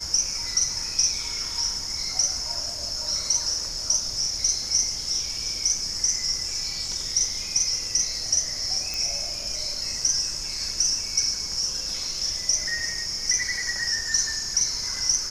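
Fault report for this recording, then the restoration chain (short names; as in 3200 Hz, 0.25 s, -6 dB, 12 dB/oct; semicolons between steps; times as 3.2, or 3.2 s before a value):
8.94 pop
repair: de-click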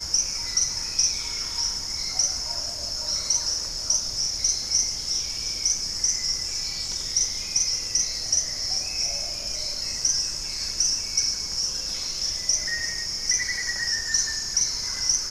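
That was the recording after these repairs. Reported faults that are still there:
none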